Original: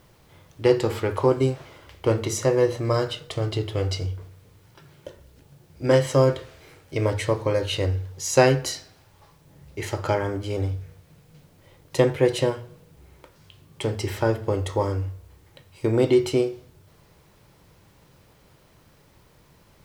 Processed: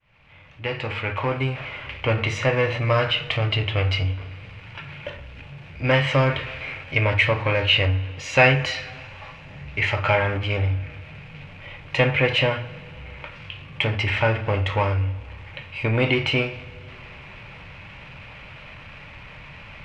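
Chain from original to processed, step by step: opening faded in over 2.42 s; bell 350 Hz -14 dB 0.7 oct; power-law curve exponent 0.7; synth low-pass 2500 Hz, resonance Q 4.7; two-slope reverb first 0.3 s, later 4.2 s, from -21 dB, DRR 11 dB; gain -1 dB

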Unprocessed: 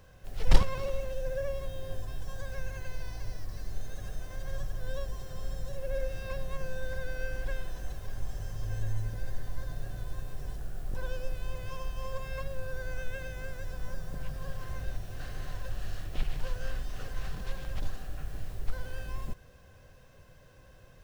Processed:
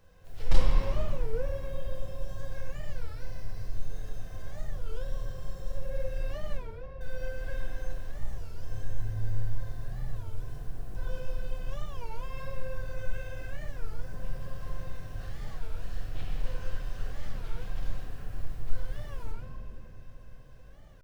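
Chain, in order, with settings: 6.6–7.01 Butterworth band-pass 610 Hz, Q 4.2; reverb RT60 3.4 s, pre-delay 6 ms, DRR -3.5 dB; record warp 33 1/3 rpm, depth 250 cents; gain -7.5 dB

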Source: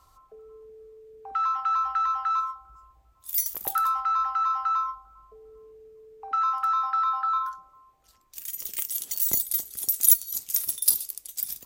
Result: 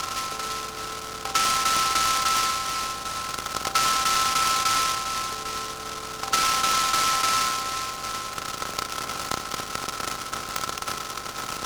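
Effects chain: per-bin compression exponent 0.2; steep low-pass 3200 Hz 36 dB/oct; transient shaper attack +3 dB, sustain -3 dB; noise-modulated delay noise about 3900 Hz, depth 0.091 ms

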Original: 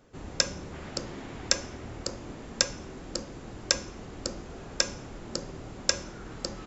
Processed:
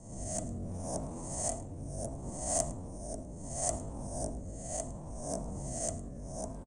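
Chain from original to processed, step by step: spectral swells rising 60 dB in 0.73 s; EQ curve 100 Hz 0 dB, 210 Hz -2 dB, 400 Hz -16 dB, 2300 Hz -27 dB, 3700 Hz -24 dB, 7900 Hz -3 dB; pitch shift +3.5 st; band shelf 760 Hz +15 dB 1.3 oct; in parallel at -11.5 dB: soft clip -28 dBFS, distortion -12 dB; on the sum: rotary speaker horn 0.7 Hz; on a send: echo 0.107 s -19 dB; on the sum: Doppler distortion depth 0.14 ms

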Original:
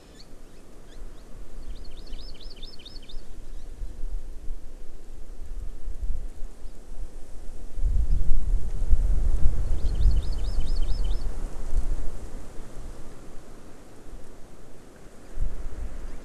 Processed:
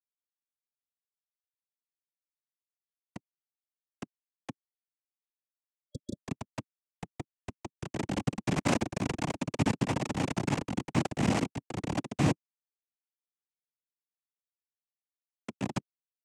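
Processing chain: level-crossing sampler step -19 dBFS; on a send: frequency-shifting echo 0.137 s, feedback 56%, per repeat -120 Hz, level -15 dB; on the sum: Schmitt trigger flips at -32 dBFS; noise vocoder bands 4; spectral delete 5.45–6.21, 600–3300 Hz; MP3 192 kbps 44100 Hz

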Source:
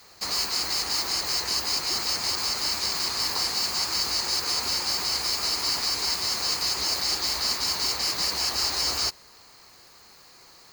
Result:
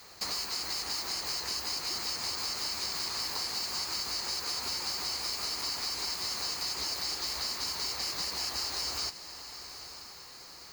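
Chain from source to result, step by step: compressor 6:1, threshold -32 dBFS, peak gain reduction 10 dB; on a send: diffused feedback echo 0.925 s, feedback 44%, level -12 dB

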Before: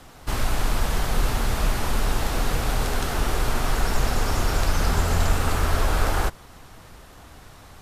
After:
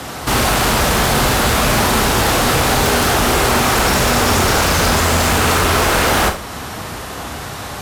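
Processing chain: HPF 46 Hz 24 dB/oct; low shelf 79 Hz -9.5 dB; in parallel at -2 dB: compressor, threshold -37 dBFS, peak gain reduction 14 dB; on the sum: sine folder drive 11 dB, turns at -11.5 dBFS; Schroeder reverb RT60 0.35 s, combs from 29 ms, DRR 6 dB

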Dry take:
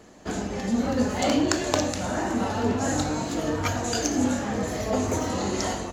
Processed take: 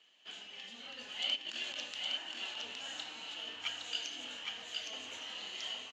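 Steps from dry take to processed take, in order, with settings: 1.35–1.78 negative-ratio compressor -26 dBFS, ratio -0.5; band-pass 3000 Hz, Q 9.3; on a send: echo 0.814 s -3.5 dB; on the sum: gain +5 dB

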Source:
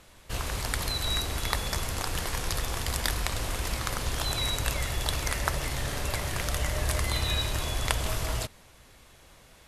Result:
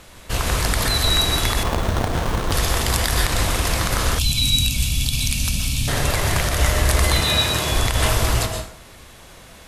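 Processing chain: plate-style reverb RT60 0.54 s, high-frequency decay 0.75×, pre-delay 0.11 s, DRR 4 dB; 4.19–5.88 spectral gain 300–2200 Hz -22 dB; 7.2–7.72 HPF 98 Hz; maximiser +14.5 dB; 1.63–2.52 running maximum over 17 samples; gain -4.5 dB

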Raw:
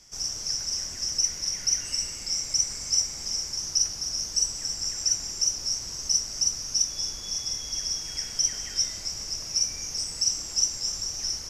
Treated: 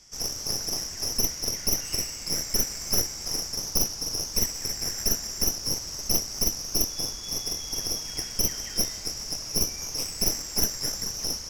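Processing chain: tracing distortion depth 0.095 ms

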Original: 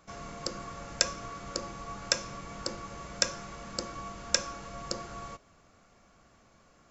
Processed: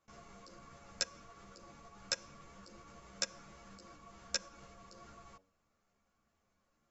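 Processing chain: level quantiser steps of 24 dB; de-hum 94.75 Hz, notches 10; ensemble effect; gain -4.5 dB

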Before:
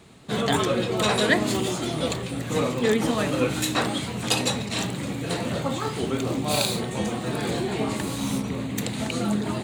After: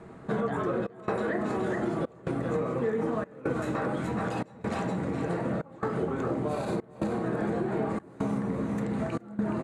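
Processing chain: Chebyshev low-pass 9000 Hz, order 2; echo 0.42 s -7 dB; limiter -17 dBFS, peak gain reduction 9.5 dB; resonant high shelf 2300 Hz -12 dB, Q 1.5; on a send at -3.5 dB: reverb RT60 0.40 s, pre-delay 5 ms; on the sum: step gate "xxxxxxxx..x" 139 bpm -24 dB; compressor 4:1, threshold -32 dBFS, peak gain reduction 11.5 dB; bell 380 Hz +5.5 dB 2.7 oct

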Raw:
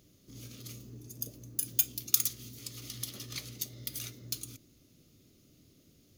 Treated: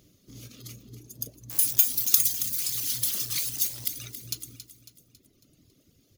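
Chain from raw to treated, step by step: 1.5–3.88 switching spikes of -23.5 dBFS; reverb removal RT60 1.9 s; feedback echo 0.275 s, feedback 47%, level -12 dB; gain +3.5 dB

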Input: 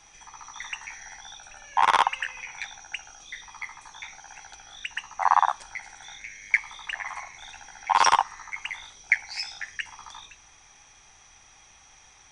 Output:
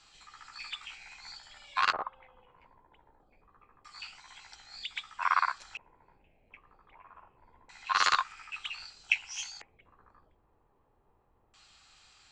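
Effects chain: LFO low-pass square 0.26 Hz 490–4000 Hz; formant shift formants +4 st; gain -7.5 dB

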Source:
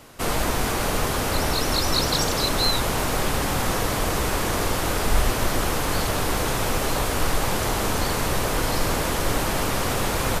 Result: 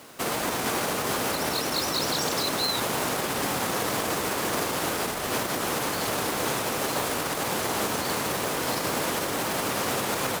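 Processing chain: limiter -16.5 dBFS, peak gain reduction 8.5 dB; HPF 170 Hz 12 dB/oct; companded quantiser 4-bit

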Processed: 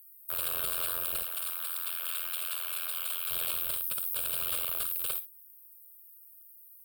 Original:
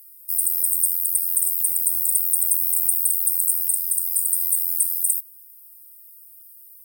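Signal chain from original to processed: wrapped overs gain 14.5 dB; 1.22–3.3 HPF 800 Hz 12 dB/oct; limiter -16 dBFS, peak gain reduction 6 dB; fixed phaser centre 1300 Hz, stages 8; non-linear reverb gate 80 ms rising, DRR 11 dB; gain -7 dB

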